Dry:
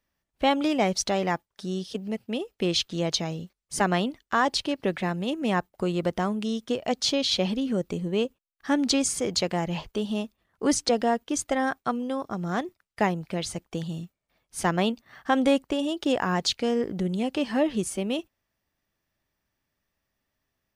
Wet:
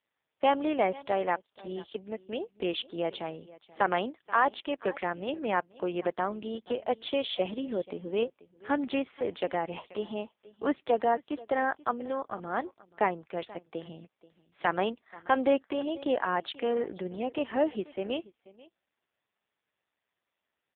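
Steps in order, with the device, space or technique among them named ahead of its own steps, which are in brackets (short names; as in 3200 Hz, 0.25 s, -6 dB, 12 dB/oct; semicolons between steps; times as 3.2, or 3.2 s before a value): satellite phone (BPF 380–3300 Hz; echo 0.483 s -20.5 dB; AMR-NB 5.15 kbps 8000 Hz)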